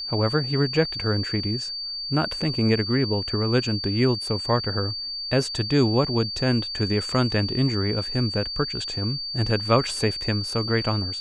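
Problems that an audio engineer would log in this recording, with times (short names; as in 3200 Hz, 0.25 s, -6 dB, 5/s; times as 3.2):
tone 4600 Hz -29 dBFS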